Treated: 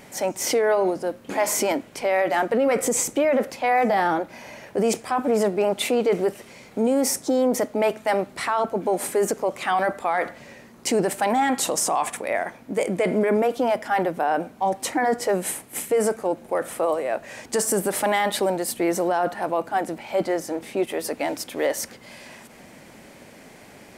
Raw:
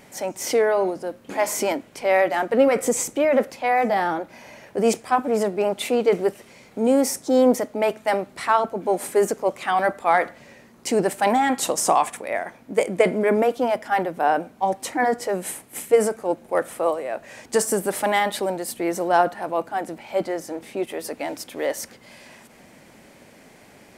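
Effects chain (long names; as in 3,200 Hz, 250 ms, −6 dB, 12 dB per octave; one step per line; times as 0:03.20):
brickwall limiter −16 dBFS, peak gain reduction 11 dB
level +3 dB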